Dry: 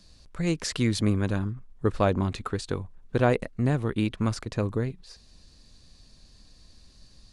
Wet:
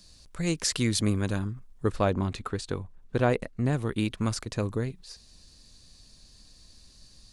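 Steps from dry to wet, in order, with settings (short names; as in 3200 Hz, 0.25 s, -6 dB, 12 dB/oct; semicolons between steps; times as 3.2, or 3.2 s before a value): high shelf 4800 Hz +11 dB, from 1.96 s +2 dB, from 3.73 s +10 dB; gain -2 dB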